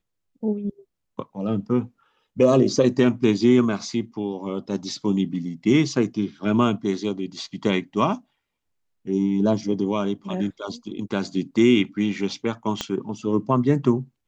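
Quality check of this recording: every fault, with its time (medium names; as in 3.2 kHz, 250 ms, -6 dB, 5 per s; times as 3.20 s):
12.81 s: pop -11 dBFS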